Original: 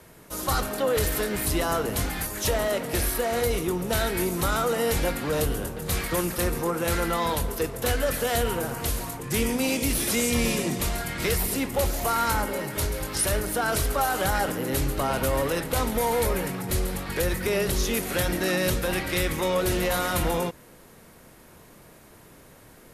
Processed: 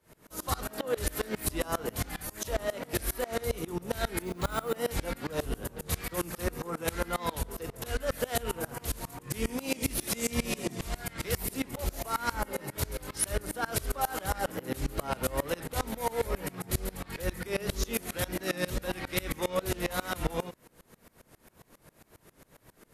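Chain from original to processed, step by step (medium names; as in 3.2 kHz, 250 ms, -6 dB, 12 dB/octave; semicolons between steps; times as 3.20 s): wow and flutter 48 cents; 4.22–4.76 s: careless resampling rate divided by 4×, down filtered, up hold; sawtooth tremolo in dB swelling 7.4 Hz, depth 25 dB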